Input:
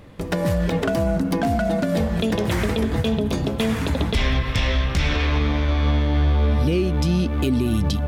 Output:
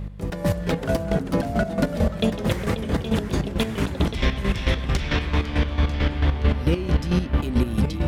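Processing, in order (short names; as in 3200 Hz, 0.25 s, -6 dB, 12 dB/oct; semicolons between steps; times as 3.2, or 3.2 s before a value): echoes that change speed 0.338 s, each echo -2 st, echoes 3, each echo -6 dB; buzz 50 Hz, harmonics 4, -30 dBFS; chopper 4.5 Hz, depth 65%, duty 35%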